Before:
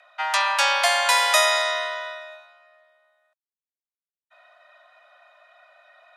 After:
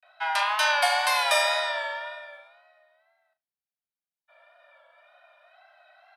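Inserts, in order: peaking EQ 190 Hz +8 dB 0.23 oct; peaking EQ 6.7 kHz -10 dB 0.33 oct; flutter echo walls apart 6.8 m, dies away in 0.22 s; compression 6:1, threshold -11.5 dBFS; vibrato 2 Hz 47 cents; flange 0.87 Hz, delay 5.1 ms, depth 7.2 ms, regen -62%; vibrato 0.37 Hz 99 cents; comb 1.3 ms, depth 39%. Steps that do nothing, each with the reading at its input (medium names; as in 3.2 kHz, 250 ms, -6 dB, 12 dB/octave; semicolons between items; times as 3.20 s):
peaking EQ 190 Hz: input has nothing below 480 Hz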